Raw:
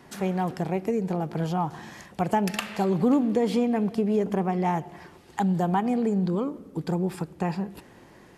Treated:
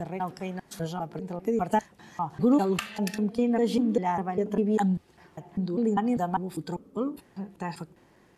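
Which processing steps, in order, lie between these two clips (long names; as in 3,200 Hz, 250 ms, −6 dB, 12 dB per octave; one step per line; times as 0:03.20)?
slices reordered back to front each 199 ms, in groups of 4
noise reduction from a noise print of the clip's start 8 dB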